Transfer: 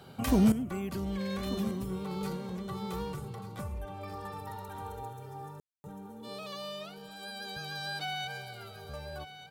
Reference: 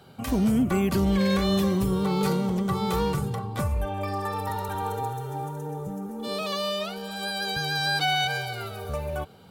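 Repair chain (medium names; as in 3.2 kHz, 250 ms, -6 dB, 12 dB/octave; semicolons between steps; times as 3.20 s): room tone fill 5.60–5.84 s; inverse comb 1190 ms -13 dB; gain correction +12 dB, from 0.52 s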